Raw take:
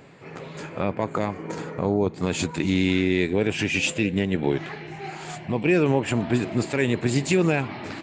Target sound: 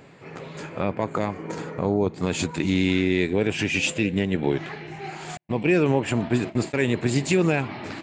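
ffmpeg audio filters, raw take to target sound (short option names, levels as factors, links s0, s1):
-filter_complex "[0:a]asettb=1/sr,asplit=3[s0][s1][s2];[s0]atrim=end=5.374[s3];[s1]atrim=start=5.37:end=6.88,asetpts=PTS-STARTPTS,afade=t=in:d=0.004:c=qsin,afade=t=out:st=1.506:d=0.004:c=qsin,agate=range=0.00355:threshold=0.0398:ratio=16:detection=peak[s4];[s2]atrim=start=6.876[s5];[s3][s4]acrossfade=d=0.004:c1=hsin:c2=qsin[s6];[s6][s5]acrossfade=d=0.004:c1=qsin:c2=hsin"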